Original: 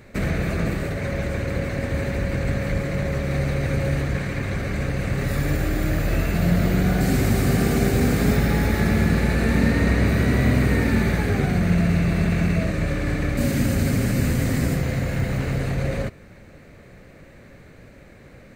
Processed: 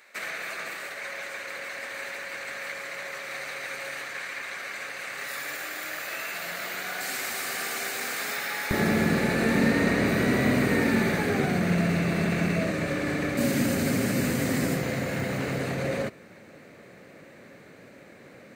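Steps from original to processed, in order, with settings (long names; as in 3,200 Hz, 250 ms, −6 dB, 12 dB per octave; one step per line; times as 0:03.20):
high-pass filter 1,100 Hz 12 dB per octave, from 0:08.71 210 Hz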